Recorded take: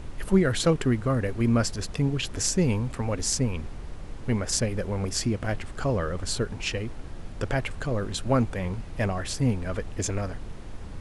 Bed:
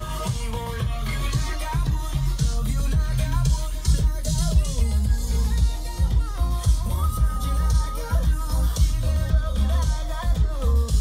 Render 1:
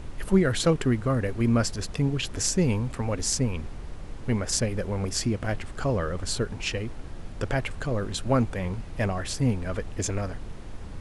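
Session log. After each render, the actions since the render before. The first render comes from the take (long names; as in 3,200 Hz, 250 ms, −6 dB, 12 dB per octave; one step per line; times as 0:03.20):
no processing that can be heard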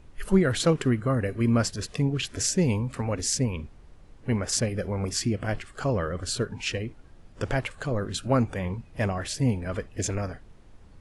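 noise reduction from a noise print 13 dB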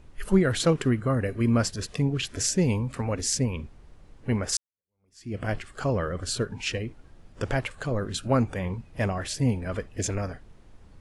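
0:04.57–0:05.37: fade in exponential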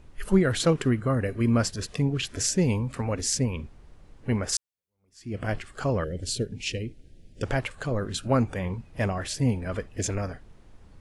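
0:06.04–0:07.43: Butterworth band-reject 1,100 Hz, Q 0.61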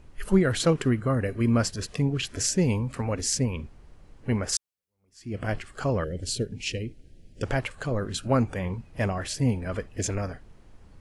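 notch filter 3,600 Hz, Q 25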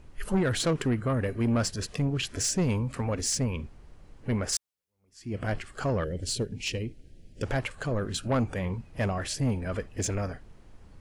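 soft clipping −20 dBFS, distortion −12 dB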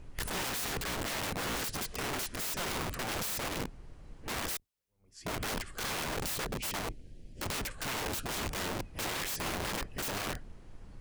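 sub-octave generator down 2 octaves, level 0 dB
wrap-around overflow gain 30.5 dB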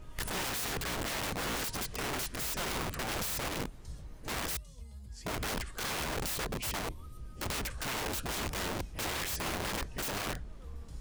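mix in bed −26.5 dB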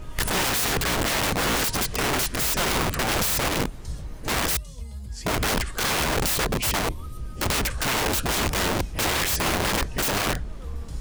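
level +11.5 dB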